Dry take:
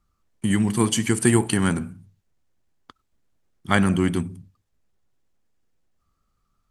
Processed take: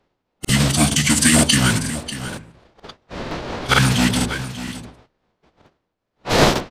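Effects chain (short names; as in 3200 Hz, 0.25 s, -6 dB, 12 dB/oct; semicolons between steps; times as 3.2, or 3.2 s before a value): wind noise 600 Hz -31 dBFS; notches 60/120/180/240/300/360/420 Hz; gate -40 dBFS, range -22 dB; sample leveller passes 1; in parallel at -9 dB: wrapped overs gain 17 dB; on the sum: bell 4600 Hz +13.5 dB 2.2 oct; formant-preserving pitch shift -7 st; on a send: echo 0.591 s -13 dB; on the sum: crackling interface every 0.47 s, samples 2048, repeat, from 0.4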